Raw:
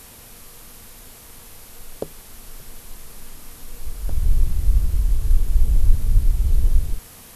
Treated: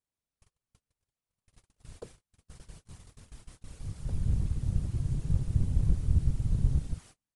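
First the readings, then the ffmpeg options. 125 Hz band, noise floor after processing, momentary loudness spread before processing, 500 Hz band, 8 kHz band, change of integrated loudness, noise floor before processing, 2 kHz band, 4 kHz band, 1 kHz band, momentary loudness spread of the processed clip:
-4.5 dB, under -85 dBFS, 20 LU, -11.0 dB, -15.0 dB, -7.5 dB, -44 dBFS, under -10 dB, -13.5 dB, -11.5 dB, 17 LU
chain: -af "aresample=22050,aresample=44100,afftfilt=real='hypot(re,im)*cos(2*PI*random(0))':imag='hypot(re,im)*sin(2*PI*random(1))':win_size=512:overlap=0.75,agate=range=-39dB:threshold=-43dB:ratio=16:detection=peak,volume=-5dB"

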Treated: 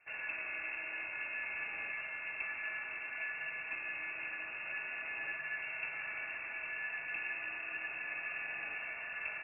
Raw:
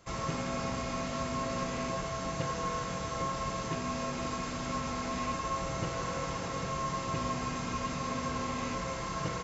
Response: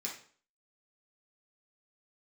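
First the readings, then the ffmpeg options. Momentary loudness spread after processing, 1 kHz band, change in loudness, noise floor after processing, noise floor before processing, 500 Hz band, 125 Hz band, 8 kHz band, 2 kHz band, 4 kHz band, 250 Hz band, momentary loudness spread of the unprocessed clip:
2 LU, -17.5 dB, -4.5 dB, -44 dBFS, -37 dBFS, -18.5 dB, under -30 dB, n/a, +6.0 dB, under -10 dB, -27.0 dB, 2 LU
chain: -af "lowpass=f=2.4k:t=q:w=0.5098,lowpass=f=2.4k:t=q:w=0.6013,lowpass=f=2.4k:t=q:w=0.9,lowpass=f=2.4k:t=q:w=2.563,afreqshift=-2800,volume=-6.5dB"

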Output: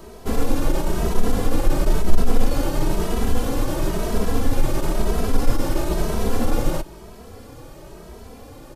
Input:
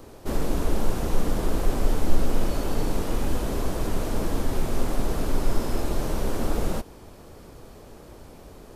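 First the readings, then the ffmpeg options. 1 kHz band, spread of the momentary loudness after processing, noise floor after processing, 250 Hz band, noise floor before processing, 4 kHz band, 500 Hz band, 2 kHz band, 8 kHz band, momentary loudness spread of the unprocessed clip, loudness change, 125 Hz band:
+4.5 dB, 18 LU, -41 dBFS, +4.5 dB, -46 dBFS, +4.5 dB, +4.5 dB, +4.5 dB, +4.5 dB, 19 LU, +4.5 dB, +4.5 dB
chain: -filter_complex "[0:a]acontrast=79,aeval=exprs='0.75*(cos(1*acos(clip(val(0)/0.75,-1,1)))-cos(1*PI/2))+0.119*(cos(2*acos(clip(val(0)/0.75,-1,1)))-cos(2*PI/2))':c=same,asplit=2[a][b];[b]adelay=2.7,afreqshift=1[c];[a][c]amix=inputs=2:normalize=1,volume=1dB"

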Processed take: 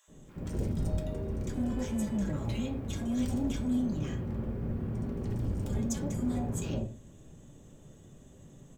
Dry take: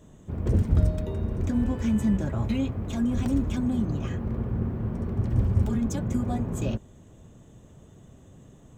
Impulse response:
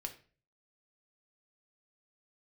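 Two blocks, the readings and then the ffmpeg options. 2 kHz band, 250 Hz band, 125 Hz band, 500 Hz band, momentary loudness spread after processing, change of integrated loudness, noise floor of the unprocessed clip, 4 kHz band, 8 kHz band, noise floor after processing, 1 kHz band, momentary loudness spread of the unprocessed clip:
-5.0 dB, -5.5 dB, -8.0 dB, -4.0 dB, 5 LU, -6.5 dB, -52 dBFS, -2.0 dB, +1.5 dB, -55 dBFS, -6.0 dB, 6 LU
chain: -filter_complex "[0:a]bass=f=250:g=-1,treble=f=4k:g=4,acrossover=split=3000[a][b];[a]asoftclip=type=tanh:threshold=-24.5dB[c];[c][b]amix=inputs=2:normalize=0,acrossover=split=980[d][e];[d]adelay=80[f];[f][e]amix=inputs=2:normalize=0[g];[1:a]atrim=start_sample=2205[h];[g][h]afir=irnorm=-1:irlink=0"

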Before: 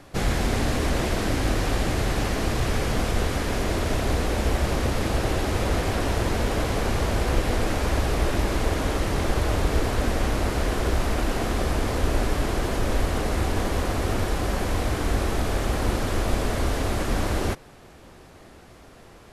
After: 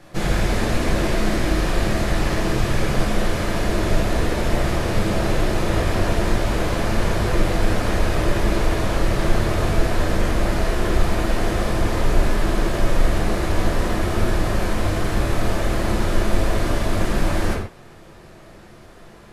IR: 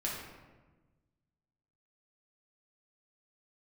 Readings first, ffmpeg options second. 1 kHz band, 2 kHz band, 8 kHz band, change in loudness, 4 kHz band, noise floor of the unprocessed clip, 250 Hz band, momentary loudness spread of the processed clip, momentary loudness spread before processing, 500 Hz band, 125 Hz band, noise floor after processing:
+2.5 dB, +3.5 dB, +1.0 dB, +3.0 dB, +2.0 dB, -48 dBFS, +4.0 dB, 1 LU, 2 LU, +3.5 dB, +3.0 dB, -44 dBFS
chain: -filter_complex "[1:a]atrim=start_sample=2205,atrim=end_sample=6615[a];[0:a][a]afir=irnorm=-1:irlink=0"

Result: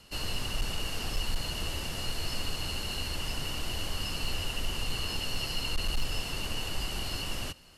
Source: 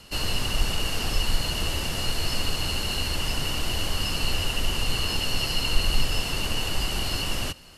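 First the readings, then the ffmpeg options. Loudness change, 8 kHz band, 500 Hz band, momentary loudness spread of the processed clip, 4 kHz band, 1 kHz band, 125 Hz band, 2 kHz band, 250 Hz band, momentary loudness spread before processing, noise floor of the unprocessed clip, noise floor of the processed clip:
-7.0 dB, -7.0 dB, -7.0 dB, 2 LU, -7.0 dB, -7.0 dB, -7.0 dB, -7.0 dB, -7.0 dB, 2 LU, -31 dBFS, -38 dBFS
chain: -af "volume=15.5dB,asoftclip=hard,volume=-15.5dB,volume=-7dB"

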